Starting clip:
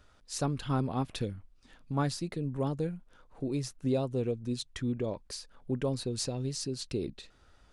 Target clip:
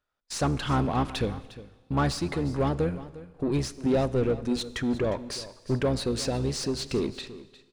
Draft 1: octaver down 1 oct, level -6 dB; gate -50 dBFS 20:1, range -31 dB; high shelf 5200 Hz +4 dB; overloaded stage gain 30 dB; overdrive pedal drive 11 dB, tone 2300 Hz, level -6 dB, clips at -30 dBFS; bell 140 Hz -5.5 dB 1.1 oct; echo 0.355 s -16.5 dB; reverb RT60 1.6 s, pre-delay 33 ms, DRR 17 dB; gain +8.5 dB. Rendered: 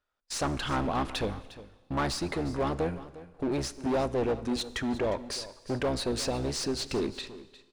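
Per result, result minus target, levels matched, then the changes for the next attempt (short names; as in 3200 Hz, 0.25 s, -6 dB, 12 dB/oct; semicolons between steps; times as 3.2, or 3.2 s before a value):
overloaded stage: distortion +14 dB; 125 Hz band -4.5 dB
change: overloaded stage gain 22 dB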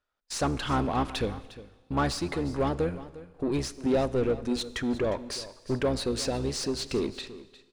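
125 Hz band -3.5 dB
remove: bell 140 Hz -5.5 dB 1.1 oct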